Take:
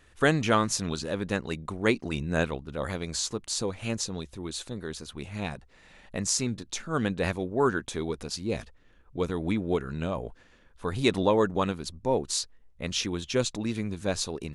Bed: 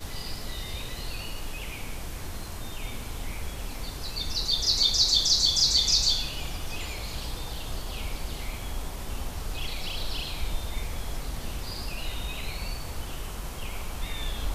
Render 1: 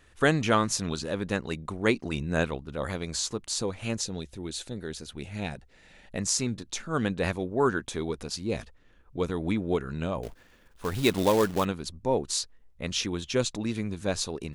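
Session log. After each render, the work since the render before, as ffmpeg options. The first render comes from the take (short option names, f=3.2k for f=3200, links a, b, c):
-filter_complex "[0:a]asettb=1/sr,asplit=3[a][b][c];[a]atrim=end=4.014[d];[b]atrim=start=4.01:end=6.18,asetpts=PTS-STARTPTS,afade=t=in:d=0.004:c=qsin,afade=t=out:st=2.166:d=0.004:c=qsin,equalizer=f=1.1k:t=o:w=0.37:g=-9[e];[c]atrim=start=6.176[f];[d][e]acrossfade=d=0.004:c1=hsin:c2=qsin[g];[g][f]acrossfade=d=0.004:c1=qsin:c2=hsin,asettb=1/sr,asplit=3[h][i][j];[h]atrim=end=10.234[k];[i]atrim=start=10.23:end=11.65,asetpts=PTS-STARTPTS,afade=t=in:d=0.004:c=qsin,afade=t=out:st=1.416:d=0.004:c=qsin,acrusher=bits=3:mode=log:mix=0:aa=0.000001[l];[j]atrim=start=11.646[m];[k][l]acrossfade=d=0.004:c1=hsin:c2=qsin[n];[n][m]acrossfade=d=0.004:c1=qsin:c2=hsin"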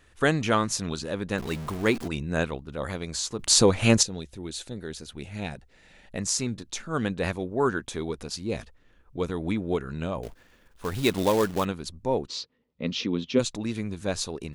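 -filter_complex "[0:a]asettb=1/sr,asplit=3[a][b][c];[a]atrim=end=1.384[d];[b]atrim=start=1.38:end=2.08,asetpts=PTS-STARTPTS,afade=t=in:d=0.004:c=qsin,afade=t=out:st=0.696:d=0.004:c=qsin,aeval=exprs='val(0)+0.5*0.0211*sgn(val(0))':c=same[e];[c]atrim=start=2.076[f];[d][e]acrossfade=d=0.004:c1=hsin:c2=qsin[g];[g][f]acrossfade=d=0.004:c1=qsin:c2=hsin,asplit=3[h][i][j];[h]afade=t=out:st=12.26:d=0.02[k];[i]highpass=130,equalizer=f=170:t=q:w=4:g=5,equalizer=f=250:t=q:w=4:g=10,equalizer=f=480:t=q:w=4:g=6,equalizer=f=750:t=q:w=4:g=-6,equalizer=f=1.6k:t=q:w=4:g=-8,lowpass=f=4.8k:w=0.5412,lowpass=f=4.8k:w=1.3066,afade=t=in:st=12.26:d=0.02,afade=t=out:st=13.38:d=0.02[l];[j]afade=t=in:st=13.38:d=0.02[m];[k][l][m]amix=inputs=3:normalize=0,asplit=3[n][o][p];[n]atrim=end=3.392[q];[o]atrim=start=3.388:end=4.032,asetpts=PTS-STARTPTS,volume=12dB[r];[p]atrim=start=4.028[s];[q][r]acrossfade=d=0.004:c1=hsin:c2=hsin[t];[t][s]acrossfade=d=0.004:c1=hsin:c2=hsin"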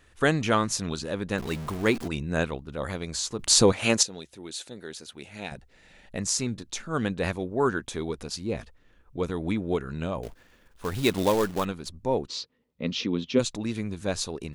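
-filter_complex "[0:a]asettb=1/sr,asplit=3[a][b][c];[a]atrim=end=3.724[d];[b]atrim=start=3.72:end=5.52,asetpts=PTS-STARTPTS,afade=t=in:d=0.004:c=qsin,afade=t=out:st=1.796:d=0.004:c=qsin,highpass=f=390:p=1[e];[c]atrim=start=5.516[f];[d][e]acrossfade=d=0.004:c1=hsin:c2=qsin[g];[g][f]acrossfade=d=0.004:c1=qsin:c2=hsin,asettb=1/sr,asplit=3[h][i][j];[h]atrim=end=8.434[k];[i]atrim=start=8.43:end=9.23,asetpts=PTS-STARTPTS,afade=t=in:d=0.004:c=qsin,afade=t=out:st=0.796:d=0.004:c=qsin,acrossover=split=2700[l][m];[m]acompressor=threshold=-49dB:ratio=4:attack=1:release=60[n];[l][n]amix=inputs=2:normalize=0[o];[j]atrim=start=9.226[p];[k][o]acrossfade=d=0.004:c1=hsin:c2=qsin[q];[q][p]acrossfade=d=0.004:c1=qsin:c2=hsin,asettb=1/sr,asplit=3[r][s][t];[r]atrim=end=11.344[u];[s]atrim=start=11.34:end=11.94,asetpts=PTS-STARTPTS,afade=t=in:d=0.004:c=qsin,afade=t=out:st=0.596:d=0.004:c=qsin,aeval=exprs='if(lt(val(0),0),0.708*val(0),val(0))':c=same[v];[t]atrim=start=11.936[w];[u][v]acrossfade=d=0.004:c1=hsin:c2=qsin[x];[x][w]acrossfade=d=0.004:c1=qsin:c2=hsin"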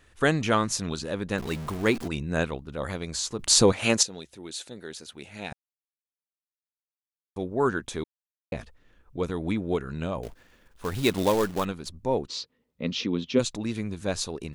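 -filter_complex "[0:a]asplit=5[a][b][c][d][e];[a]atrim=end=5.53,asetpts=PTS-STARTPTS,afade=t=out:st=5.526:d=0.004:c=hsin[f];[b]atrim=start=5.53:end=7.36,asetpts=PTS-STARTPTS,volume=0[g];[c]atrim=start=7.36:end=8.04,asetpts=PTS-STARTPTS,afade=t=in:d=0.004:c=hsin,afade=t=out:st=0.676:d=0.004:c=hsin[h];[d]atrim=start=8.04:end=8.52,asetpts=PTS-STARTPTS,volume=0[i];[e]atrim=start=8.52,asetpts=PTS-STARTPTS,afade=t=in:d=0.004:c=hsin[j];[f][g][h][i][j]concat=n=5:v=0:a=1"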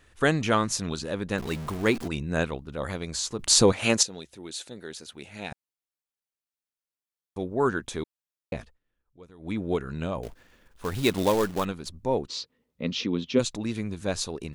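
-filter_complex "[0:a]asplit=3[a][b][c];[a]atrim=end=8.79,asetpts=PTS-STARTPTS,afade=t=out:st=8.56:d=0.23:silence=0.0944061[d];[b]atrim=start=8.79:end=9.38,asetpts=PTS-STARTPTS,volume=-20.5dB[e];[c]atrim=start=9.38,asetpts=PTS-STARTPTS,afade=t=in:d=0.23:silence=0.0944061[f];[d][e][f]concat=n=3:v=0:a=1"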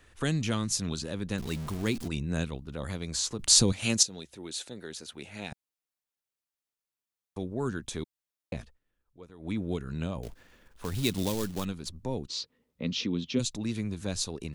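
-filter_complex "[0:a]acrossover=split=260|3000[a][b][c];[b]acompressor=threshold=-41dB:ratio=2.5[d];[a][d][c]amix=inputs=3:normalize=0"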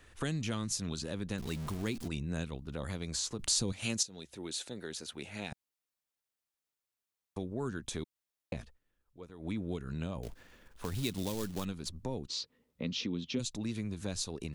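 -af "acompressor=threshold=-36dB:ratio=2"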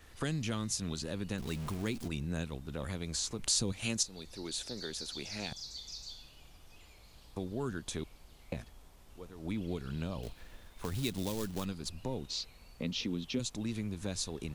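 -filter_complex "[1:a]volume=-23dB[a];[0:a][a]amix=inputs=2:normalize=0"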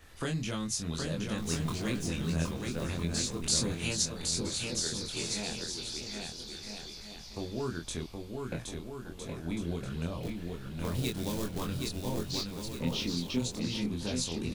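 -filter_complex "[0:a]asplit=2[a][b];[b]adelay=24,volume=-3dB[c];[a][c]amix=inputs=2:normalize=0,aecho=1:1:770|1309|1686|1950|2135:0.631|0.398|0.251|0.158|0.1"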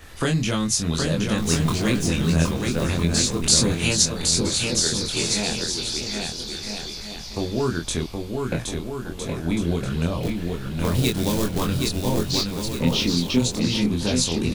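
-af "volume=11.5dB,alimiter=limit=-2dB:level=0:latency=1"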